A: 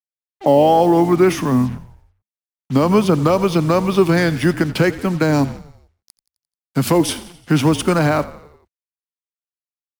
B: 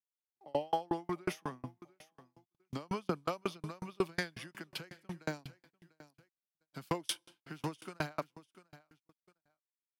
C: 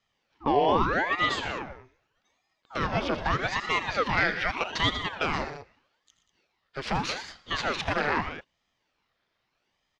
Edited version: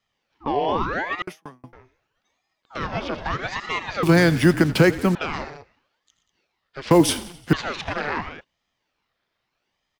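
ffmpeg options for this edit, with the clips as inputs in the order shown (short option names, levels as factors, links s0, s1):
-filter_complex "[0:a]asplit=2[s0][s1];[2:a]asplit=4[s2][s3][s4][s5];[s2]atrim=end=1.222[s6];[1:a]atrim=start=1.218:end=1.732[s7];[s3]atrim=start=1.728:end=4.032[s8];[s0]atrim=start=4.028:end=5.152[s9];[s4]atrim=start=5.148:end=6.912[s10];[s1]atrim=start=6.908:end=7.532[s11];[s5]atrim=start=7.528[s12];[s6][s7]acrossfade=d=0.004:c1=hsin:c2=hsin[s13];[s13][s8]acrossfade=d=0.004:c1=hsin:c2=hsin[s14];[s14][s9]acrossfade=d=0.004:c1=hsin:c2=hsin[s15];[s15][s10]acrossfade=d=0.004:c1=hsin:c2=hsin[s16];[s16][s11]acrossfade=d=0.004:c1=hsin:c2=hsin[s17];[s17][s12]acrossfade=d=0.004:c1=hsin:c2=hsin"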